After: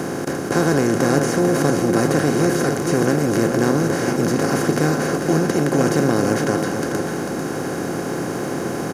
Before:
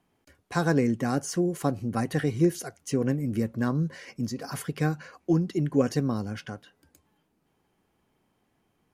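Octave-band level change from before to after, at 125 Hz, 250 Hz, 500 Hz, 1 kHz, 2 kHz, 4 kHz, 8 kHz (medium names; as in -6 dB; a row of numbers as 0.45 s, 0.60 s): +7.0 dB, +9.0 dB, +12.0 dB, +12.5 dB, +13.5 dB, +12.5 dB, +13.0 dB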